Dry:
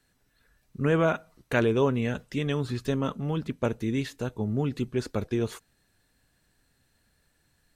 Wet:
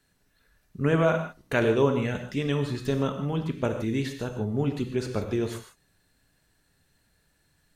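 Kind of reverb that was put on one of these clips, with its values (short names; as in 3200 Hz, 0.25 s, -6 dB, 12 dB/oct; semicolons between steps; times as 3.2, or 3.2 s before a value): non-linear reverb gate 0.18 s flat, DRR 5.5 dB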